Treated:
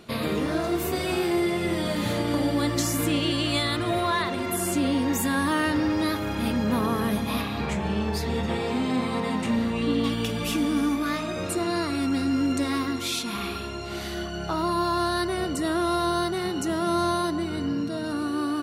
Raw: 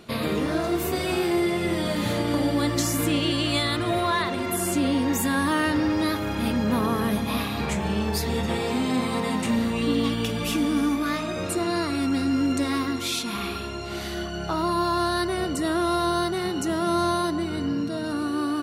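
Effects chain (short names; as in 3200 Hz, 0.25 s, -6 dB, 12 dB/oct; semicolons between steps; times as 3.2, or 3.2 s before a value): 7.41–10.04 high shelf 7000 Hz -10 dB; gain -1 dB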